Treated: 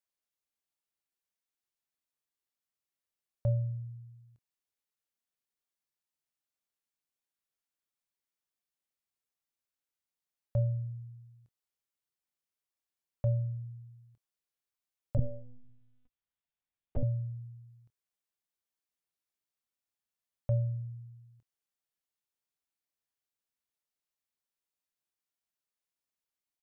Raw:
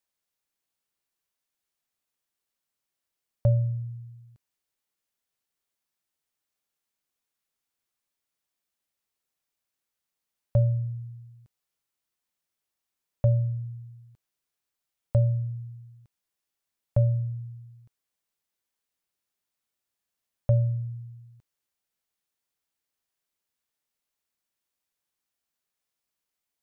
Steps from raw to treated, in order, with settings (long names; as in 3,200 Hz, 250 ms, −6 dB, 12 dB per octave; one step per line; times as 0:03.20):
double-tracking delay 26 ms −14 dB
0:15.17–0:17.03: one-pitch LPC vocoder at 8 kHz 250 Hz
level −8.5 dB